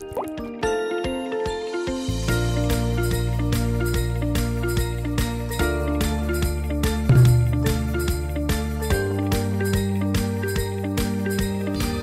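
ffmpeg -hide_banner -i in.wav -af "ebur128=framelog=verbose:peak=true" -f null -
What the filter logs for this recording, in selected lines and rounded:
Integrated loudness:
  I:         -23.4 LUFS
  Threshold: -33.4 LUFS
Loudness range:
  LRA:         2.9 LU
  Threshold: -43.0 LUFS
  LRA low:   -24.2 LUFS
  LRA high:  -21.4 LUFS
True peak:
  Peak:       -9.0 dBFS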